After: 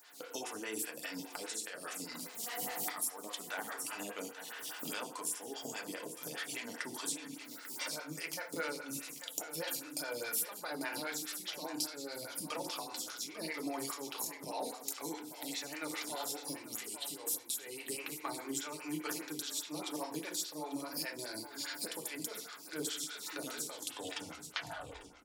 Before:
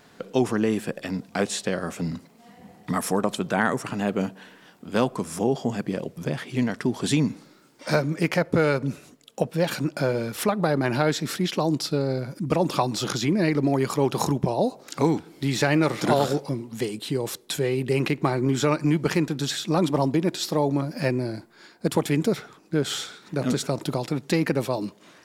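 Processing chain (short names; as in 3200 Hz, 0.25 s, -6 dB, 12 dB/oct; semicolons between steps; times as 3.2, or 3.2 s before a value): tape stop at the end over 1.61 s; recorder AGC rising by 32 dB/s; differentiator; compressor 6:1, threshold -40 dBFS, peak gain reduction 18.5 dB; on a send: feedback echo 0.844 s, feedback 18%, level -12 dB; on the sum: FDN reverb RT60 0.62 s, low-frequency decay 1.3×, high-frequency decay 0.65×, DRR 1 dB; photocell phaser 4.9 Hz; gain +5.5 dB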